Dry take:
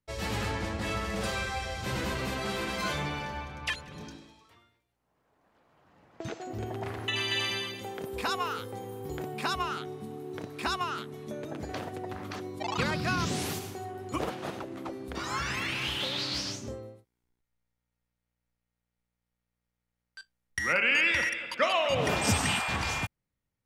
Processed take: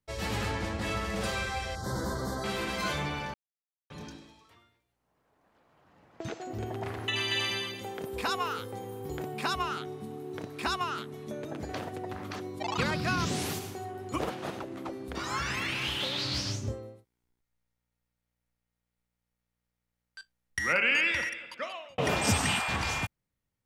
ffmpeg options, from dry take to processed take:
-filter_complex "[0:a]asettb=1/sr,asplit=3[a][b][c];[a]atrim=end=1.754[d];[b]atrim=start=1.75:end=2.44,asetpts=PTS-STARTPTS,afade=t=in:d=0.004:c=qsin,afade=t=out:st=0.686:d=0.004:c=qsin,asuperstop=centerf=2600:order=4:qfactor=0.94[e];[c]atrim=start=2.436[f];[d][e]acrossfade=d=0.004:c1=hsin:c2=qsin[g];[g][f]acrossfade=d=0.004:c1=qsin:c2=hsin,asettb=1/sr,asplit=3[h][i][j];[h]atrim=end=16.244[k];[i]atrim=start=16.24:end=16.72,asetpts=PTS-STARTPTS,afade=t=in:d=0.004:c=qsin,afade=t=out:st=0.476:d=0.004:c=qsin,equalizer=f=95:t=o:w=0.77:g=14[l];[j]atrim=start=16.716[m];[k][l]acrossfade=d=0.004:c1=hsin:c2=qsin[n];[n][m]acrossfade=d=0.004:c1=qsin:c2=hsin,asplit=4[o][p][q][r];[o]atrim=end=3.34,asetpts=PTS-STARTPTS,afade=t=out:st=3.336:d=0.004:c=hsin[s];[p]atrim=start=3.34:end=3.9,asetpts=PTS-STARTPTS,volume=0[t];[q]atrim=start=3.9:end=21.98,asetpts=PTS-STARTPTS,afade=t=in:d=0.004:c=hsin,afade=t=out:st=16.94:d=1.14[u];[r]atrim=start=21.98,asetpts=PTS-STARTPTS,afade=t=in:d=0.004:c=hsin[v];[s][t][u][v]concat=n=4:v=0:a=1"

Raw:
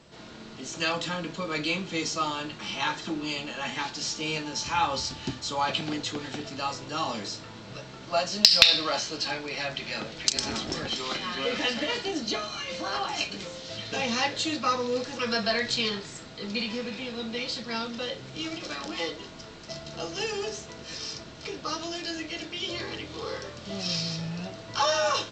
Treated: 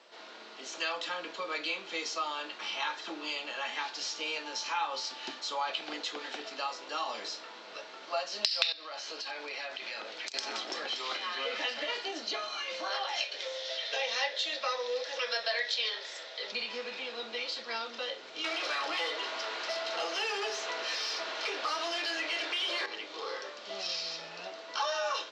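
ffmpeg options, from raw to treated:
-filter_complex "[0:a]asettb=1/sr,asplit=3[a][b][c];[a]atrim=end=8.724[d];[b]atrim=start=8.72:end=10.34,asetpts=PTS-STARTPTS,afade=t=in:d=0.004:c=qsin,afade=t=out:st=1.616:d=0.004:c=qsin,acompressor=threshold=-33dB:ratio=10:attack=3.2:release=140:knee=1:detection=peak[e];[c]atrim=start=10.336[f];[d][e]acrossfade=d=0.004:c1=hsin:c2=qsin[g];[g][f]acrossfade=d=0.004:c1=qsin:c2=hsin,asettb=1/sr,asplit=3[h][i][j];[h]atrim=end=12.904[k];[i]atrim=start=12.9:end=16.52,asetpts=PTS-STARTPTS,afade=t=in:d=0.004:c=qsin,afade=t=out:st=3.616:d=0.004:c=qsin,highpass=470,equalizer=f=550:t=q:w=4:g=10,equalizer=f=1.2k:t=q:w=4:g=-4,equalizer=f=1.9k:t=q:w=4:g=6,equalizer=f=3.5k:t=q:w=4:g=8,equalizer=f=5.5k:t=q:w=4:g=5,lowpass=f=8k:w=0.5412,lowpass=f=8k:w=1.3066[l];[j]atrim=start=16.516[m];[k][l]acrossfade=d=0.004:c1=hsin:c2=qsin[n];[n][m]acrossfade=d=0.004:c1=qsin:c2=hsin,asettb=1/sr,asplit=3[o][p][q];[o]atrim=end=18.444[r];[p]atrim=start=18.44:end=22.86,asetpts=PTS-STARTPTS,afade=t=in:d=0.004:c=qsin,afade=t=out:st=4.416:d=0.004:c=qsin,asplit=2[s][t];[t]highpass=f=720:p=1,volume=22dB,asoftclip=type=tanh:threshold=-18.5dB[u];[s][u]amix=inputs=2:normalize=0,lowpass=f=3.8k:p=1,volume=-6dB[v];[q]atrim=start=22.856[w];[r][v]acrossfade=d=0.004:c1=hsin:c2=qsin[x];[x][w]acrossfade=d=0.004:c1=qsin:c2=hsin,highpass=f=220:w=0.5412,highpass=f=220:w=1.3066,acrossover=split=430 6100:gain=0.1 1 0.126[y][z][aa];[y][z][aa]amix=inputs=3:normalize=0,acompressor=threshold=-34dB:ratio=2"

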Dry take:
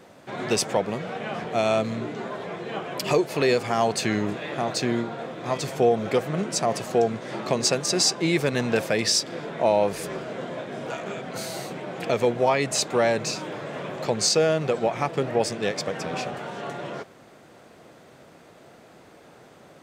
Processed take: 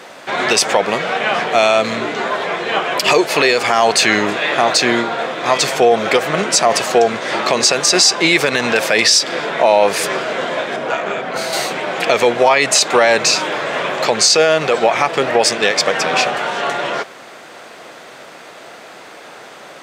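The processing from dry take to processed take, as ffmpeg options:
-filter_complex "[0:a]asettb=1/sr,asplit=3[a][b][c];[a]atrim=end=10.764[d];[b]atrim=start=10.76:end=11.53,asetpts=PTS-STARTPTS,afade=t=in:d=0.004:c=qsin,afade=t=out:st=0.766:d=0.004:c=qsin,highshelf=f=2.8k:g=-11[e];[c]atrim=start=11.526[f];[d][e]acrossfade=d=0.004:c1=hsin:c2=qsin[g];[g][f]acrossfade=d=0.004:c1=qsin:c2=hsin,highpass=f=1.3k:p=1,highshelf=f=7.5k:g=-9,alimiter=level_in=21.5dB:limit=-1dB:release=50:level=0:latency=1,volume=-1dB"

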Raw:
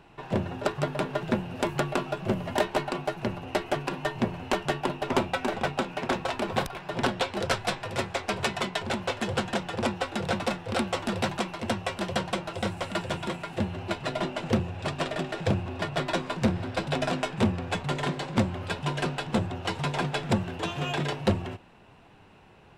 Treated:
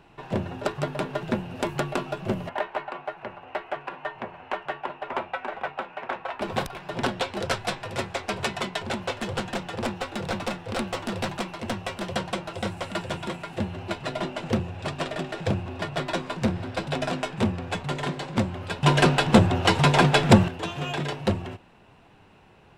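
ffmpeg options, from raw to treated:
-filter_complex "[0:a]asettb=1/sr,asplit=3[a][b][c];[a]atrim=end=2.494[d];[b]atrim=start=2.49:end=6.41,asetpts=PTS-STARTPTS,afade=t=in:d=0.004:c=qsin,afade=t=out:st=3.916:d=0.004:c=qsin,acrossover=split=520 2700:gain=0.158 1 0.0891[e][f][g];[e][f][g]amix=inputs=3:normalize=0[h];[c]atrim=start=6.406[i];[d][h]acrossfade=d=0.004:c1=hsin:c2=qsin[j];[j][i]acrossfade=d=0.004:c1=qsin:c2=hsin,asettb=1/sr,asplit=3[k][l][m];[k]atrim=end=9.124[n];[l]atrim=start=9.12:end=12.16,asetpts=PTS-STARTPTS,afade=t=in:d=0.004:c=qsin,afade=t=out:st=3.036:d=0.004:c=qsin,aeval=exprs='clip(val(0),-1,0.0398)':c=same[o];[m]atrim=start=12.156[p];[n][o]acrossfade=d=0.004:c1=hsin:c2=qsin[q];[q][p]acrossfade=d=0.004:c1=qsin:c2=hsin,asplit=3[r][s][t];[r]atrim=end=18.832[u];[s]atrim=start=18.828:end=20.482,asetpts=PTS-STARTPTS,volume=10.5dB[v];[t]atrim=start=20.478[w];[u][v]acrossfade=d=0.004:c1=hsin:c2=hsin[x];[x][w]acrossfade=d=0.004:c1=hsin:c2=hsin"

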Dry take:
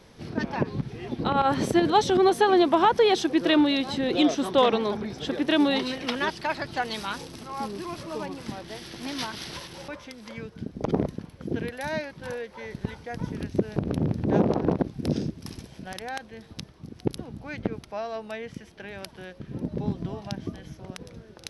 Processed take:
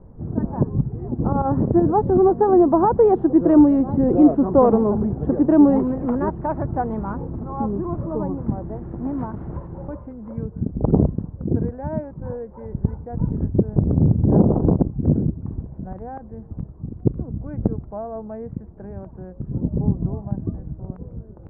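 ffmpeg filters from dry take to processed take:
-filter_complex "[0:a]asettb=1/sr,asplit=3[a][b][c];[a]atrim=end=16.984[d];[b]atrim=start=16.98:end=17.51,asetpts=PTS-STARTPTS,afade=t=in:d=0.004:c=qsin,afade=t=out:st=0.526:d=0.004:c=qsin,equalizer=f=840:t=o:w=0.21:g=-10.5[e];[c]atrim=start=17.506[f];[d][e]acrossfade=d=0.004:c1=hsin:c2=qsin[g];[g][f]acrossfade=d=0.004:c1=qsin:c2=hsin,aemphasis=mode=reproduction:type=riaa,dynaudnorm=f=160:g=31:m=11.5dB,lowpass=f=1.1k:w=0.5412,lowpass=f=1.1k:w=1.3066,volume=-1dB"

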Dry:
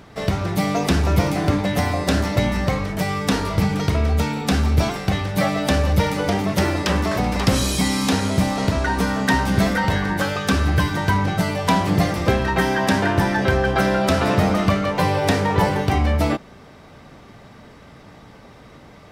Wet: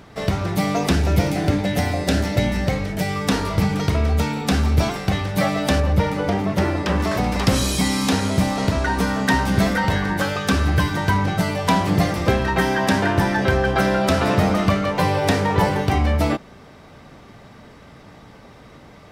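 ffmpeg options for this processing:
-filter_complex "[0:a]asettb=1/sr,asplit=3[a][b][c];[a]atrim=end=0.954[d];[b]atrim=start=0.95:end=3.16,asetpts=PTS-STARTPTS,afade=t=in:d=0.004:c=qsin,afade=t=out:st=2.206:d=0.004:c=qsin,equalizer=f=1.1k:w=3.7:g=-10[e];[c]atrim=start=3.156[f];[d][e]acrossfade=d=0.004:c1=hsin:c2=qsin[g];[g][f]acrossfade=d=0.004:c1=qsin:c2=hsin,asettb=1/sr,asplit=3[h][i][j];[h]atrim=end=5.804[k];[i]atrim=start=5.8:end=7,asetpts=PTS-STARTPTS,afade=t=in:d=0.004:c=qsin,afade=t=out:st=1.196:d=0.004:c=qsin,highshelf=f=3.2k:g=-9.5[l];[j]atrim=start=6.996[m];[k][l]acrossfade=d=0.004:c1=hsin:c2=qsin[n];[n][m]acrossfade=d=0.004:c1=qsin:c2=hsin"

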